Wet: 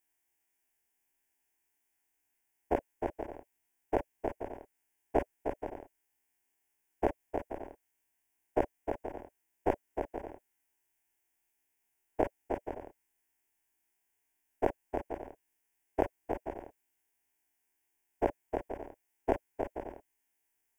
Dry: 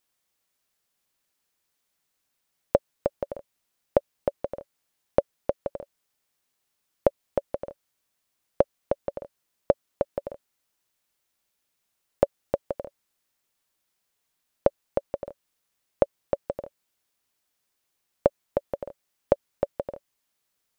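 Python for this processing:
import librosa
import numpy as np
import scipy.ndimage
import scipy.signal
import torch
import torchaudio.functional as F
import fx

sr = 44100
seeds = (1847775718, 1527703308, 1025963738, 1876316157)

y = fx.spec_dilate(x, sr, span_ms=60)
y = fx.fixed_phaser(y, sr, hz=820.0, stages=8)
y = y * 10.0 ** (-4.5 / 20.0)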